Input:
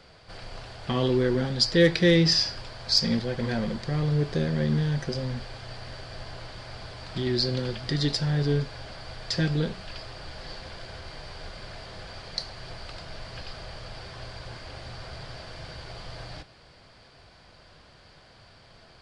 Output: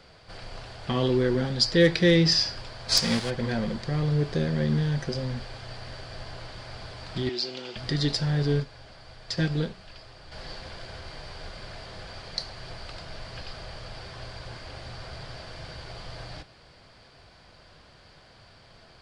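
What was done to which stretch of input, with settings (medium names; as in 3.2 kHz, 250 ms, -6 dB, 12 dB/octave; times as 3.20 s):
2.88–3.29 s: formants flattened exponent 0.6
7.29–7.76 s: cabinet simulation 460–7700 Hz, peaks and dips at 530 Hz -8 dB, 1.1 kHz -5 dB, 1.7 kHz -8 dB, 2.8 kHz +5 dB, 4.3 kHz -5 dB
8.60–10.32 s: upward expansion, over -37 dBFS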